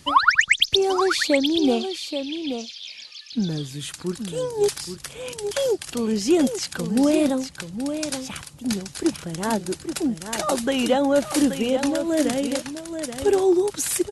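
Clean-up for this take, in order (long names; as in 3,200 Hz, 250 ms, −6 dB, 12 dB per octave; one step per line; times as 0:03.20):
downward expander −32 dBFS, range −21 dB
echo removal 828 ms −8.5 dB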